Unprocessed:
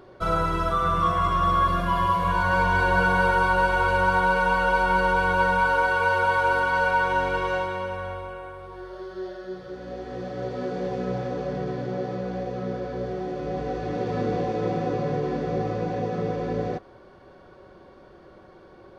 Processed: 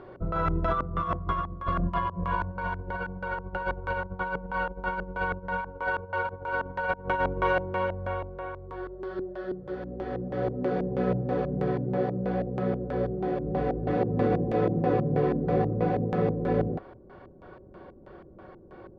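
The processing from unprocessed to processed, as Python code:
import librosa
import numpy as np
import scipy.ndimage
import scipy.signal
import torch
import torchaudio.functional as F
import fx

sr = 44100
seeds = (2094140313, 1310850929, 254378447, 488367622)

y = fx.over_compress(x, sr, threshold_db=-25.0, ratio=-0.5)
y = fx.filter_lfo_lowpass(y, sr, shape='square', hz=3.1, low_hz=310.0, high_hz=2500.0, q=0.75)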